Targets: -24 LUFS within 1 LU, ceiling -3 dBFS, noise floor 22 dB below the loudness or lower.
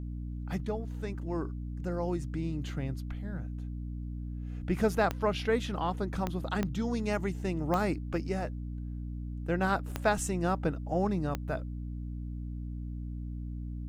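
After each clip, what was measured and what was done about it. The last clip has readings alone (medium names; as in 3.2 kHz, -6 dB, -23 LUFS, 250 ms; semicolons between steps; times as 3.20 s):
clicks found 6; hum 60 Hz; highest harmonic 300 Hz; hum level -35 dBFS; loudness -33.5 LUFS; peak level -14.0 dBFS; loudness target -24.0 LUFS
-> de-click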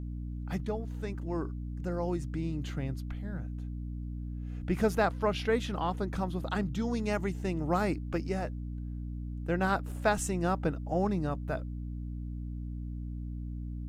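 clicks found 0; hum 60 Hz; highest harmonic 300 Hz; hum level -35 dBFS
-> hum notches 60/120/180/240/300 Hz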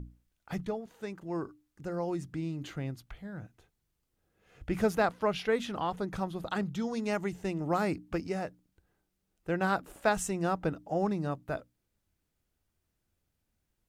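hum not found; loudness -33.5 LUFS; peak level -14.5 dBFS; loudness target -24.0 LUFS
-> trim +9.5 dB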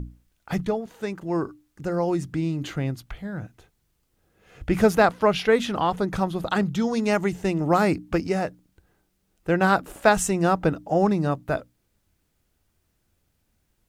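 loudness -24.0 LUFS; peak level -5.0 dBFS; noise floor -72 dBFS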